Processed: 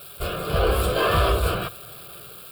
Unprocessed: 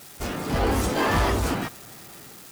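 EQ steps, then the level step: notches 50/100 Hz; fixed phaser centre 1300 Hz, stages 8; +5.5 dB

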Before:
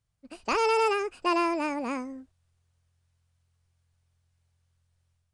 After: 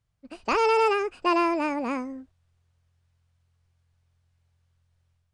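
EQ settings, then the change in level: high shelf 7400 Hz -12 dB; +3.0 dB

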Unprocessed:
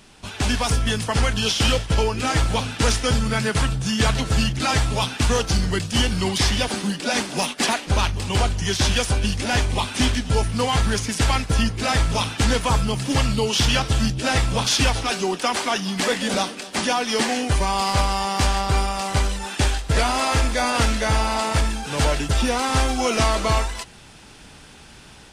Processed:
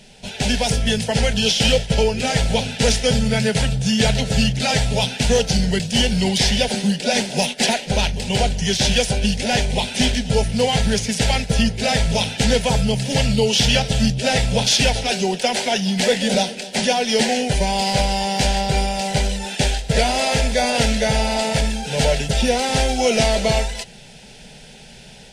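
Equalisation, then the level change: high shelf 8600 Hz -9 dB; fixed phaser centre 310 Hz, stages 6; +6.5 dB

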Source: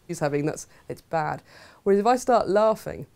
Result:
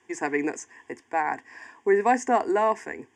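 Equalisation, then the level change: dynamic EQ 2000 Hz, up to +5 dB, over -52 dBFS, Q 6; speaker cabinet 180–7700 Hz, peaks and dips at 240 Hz +6 dB, 1100 Hz +9 dB, 1800 Hz +10 dB, 3200 Hz +6 dB, 4900 Hz +5 dB, 7000 Hz +7 dB; fixed phaser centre 850 Hz, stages 8; 0.0 dB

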